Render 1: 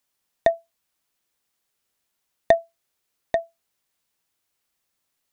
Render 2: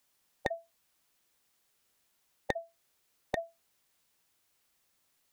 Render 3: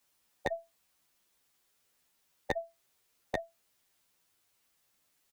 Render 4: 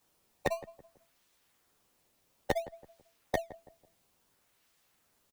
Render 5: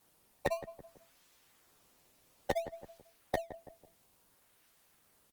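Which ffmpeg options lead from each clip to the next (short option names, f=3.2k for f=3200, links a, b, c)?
-af "afftfilt=real='re*lt(hypot(re,im),0.708)':imag='im*lt(hypot(re,im),0.708)':win_size=1024:overlap=0.75,acompressor=threshold=-33dB:ratio=5,volume=3dB"
-filter_complex "[0:a]asplit=2[a][b];[b]adelay=10,afreqshift=-0.42[c];[a][c]amix=inputs=2:normalize=1,volume=3dB"
-filter_complex "[0:a]asplit=2[a][b];[b]acrusher=samples=15:mix=1:aa=0.000001:lfo=1:lforange=24:lforate=0.58,volume=-5dB[c];[a][c]amix=inputs=2:normalize=0,asplit=2[d][e];[e]adelay=165,lowpass=f=1k:p=1,volume=-16dB,asplit=2[f][g];[g]adelay=165,lowpass=f=1k:p=1,volume=0.39,asplit=2[h][i];[i]adelay=165,lowpass=f=1k:p=1,volume=0.39[j];[d][f][h][j]amix=inputs=4:normalize=0"
-af "alimiter=limit=-24dB:level=0:latency=1:release=296,volume=5dB" -ar 48000 -c:a libopus -b:a 32k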